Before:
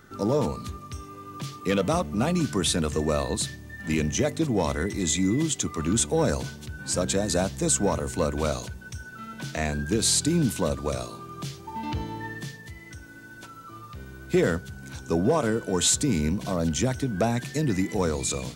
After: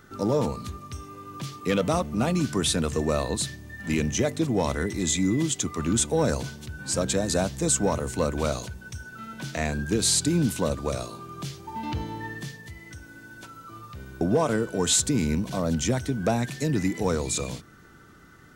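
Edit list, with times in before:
0:14.21–0:15.15: remove

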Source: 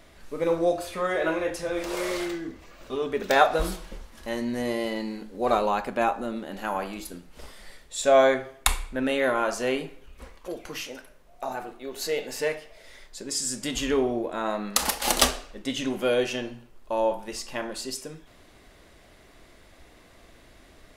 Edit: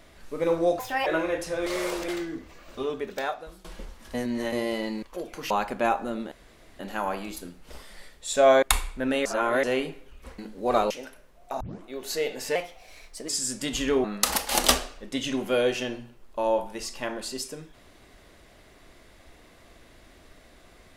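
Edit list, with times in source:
0:00.79–0:01.19: play speed 146%
0:01.79–0:02.21: reverse
0:02.94–0:03.77: fade out quadratic, to −21.5 dB
0:04.27–0:04.65: reverse
0:05.15–0:05.67: swap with 0:10.34–0:10.82
0:06.48: splice in room tone 0.48 s
0:08.31–0:08.58: remove
0:09.21–0:09.59: reverse
0:11.52: tape start 0.26 s
0:12.47–0:13.31: play speed 114%
0:14.06–0:14.57: remove

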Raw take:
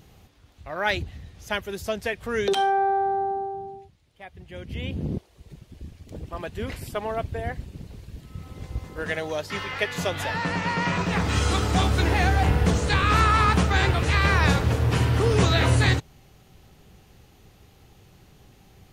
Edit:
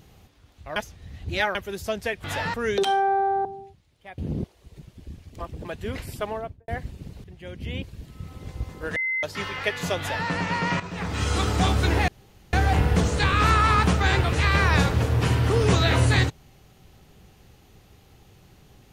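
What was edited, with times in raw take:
0:00.76–0:01.55: reverse
0:03.15–0:03.60: remove
0:04.33–0:04.92: move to 0:07.98
0:06.13–0:06.39: reverse
0:06.98–0:07.42: fade out and dull
0:09.11–0:09.38: beep over 2,060 Hz −23 dBFS
0:10.13–0:10.43: duplicate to 0:02.24
0:10.95–0:11.61: fade in, from −13 dB
0:12.23: splice in room tone 0.45 s

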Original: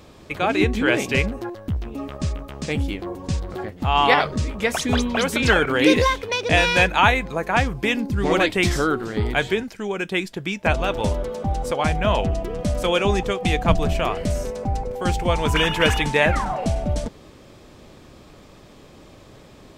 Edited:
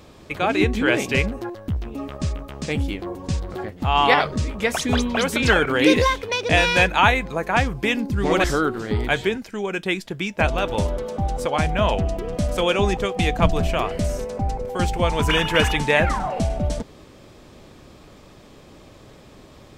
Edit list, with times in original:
0:08.44–0:08.70: remove

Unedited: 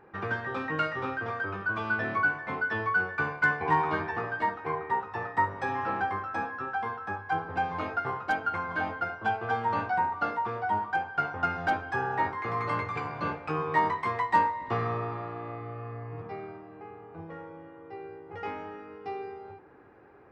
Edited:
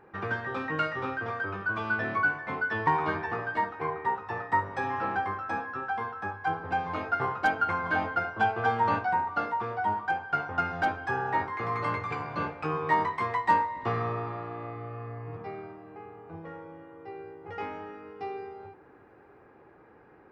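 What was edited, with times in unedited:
0:02.87–0:03.72: remove
0:07.98–0:09.84: clip gain +3 dB

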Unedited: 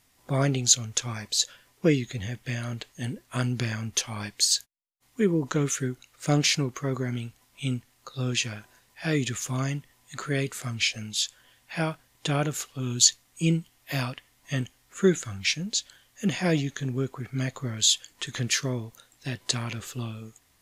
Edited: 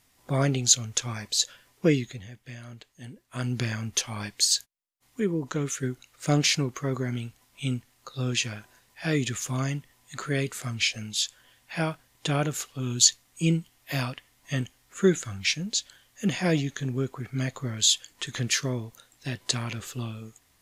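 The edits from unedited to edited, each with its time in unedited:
0:01.99–0:03.54: duck −10.5 dB, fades 0.25 s
0:05.20–0:05.83: clip gain −3.5 dB

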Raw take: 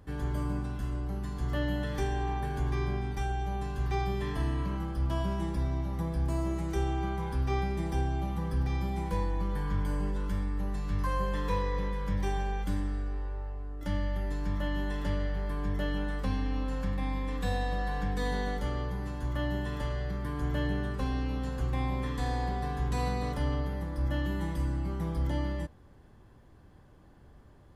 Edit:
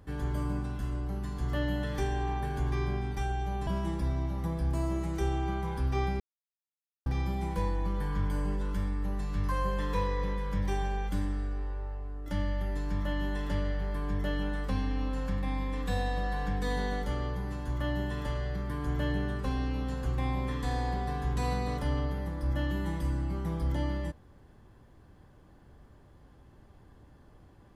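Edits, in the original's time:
0:03.67–0:05.22: remove
0:07.75–0:08.61: silence

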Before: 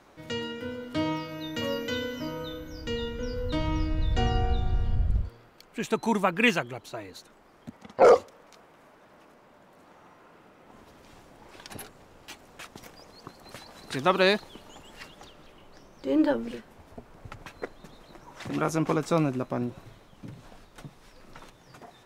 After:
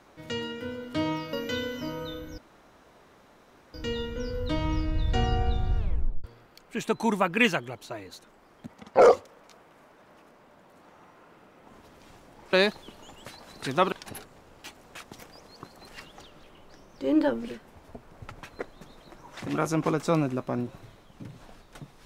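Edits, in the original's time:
0:01.33–0:01.72: remove
0:02.77: splice in room tone 1.36 s
0:04.81: tape stop 0.46 s
0:11.56–0:13.53: swap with 0:14.20–0:14.92

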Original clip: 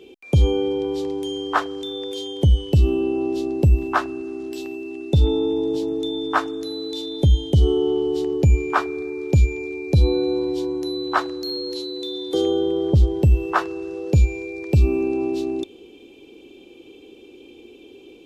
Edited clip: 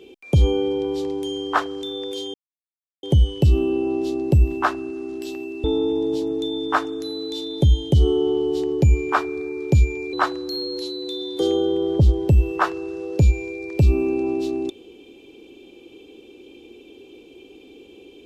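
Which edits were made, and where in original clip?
0:02.34: splice in silence 0.69 s
0:04.95–0:05.25: remove
0:09.74–0:11.07: remove

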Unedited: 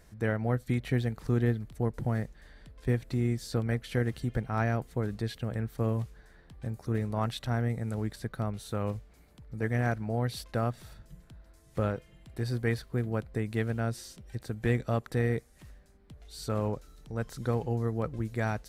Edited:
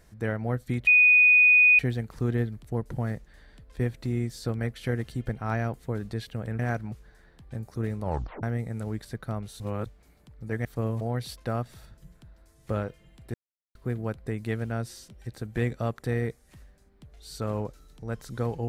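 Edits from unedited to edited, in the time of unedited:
0:00.87: insert tone 2,480 Hz −14 dBFS 0.92 s
0:05.67–0:06.03: swap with 0:09.76–0:10.09
0:07.13: tape stop 0.41 s
0:08.71–0:08.97: reverse
0:12.42–0:12.83: silence

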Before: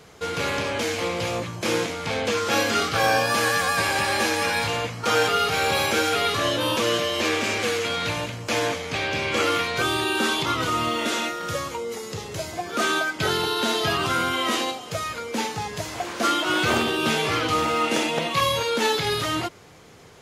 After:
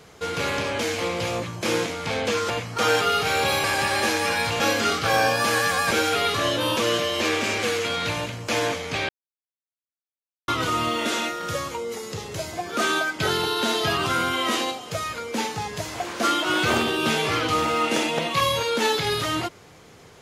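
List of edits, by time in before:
0:02.50–0:03.81: swap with 0:04.77–0:05.91
0:09.09–0:10.48: silence

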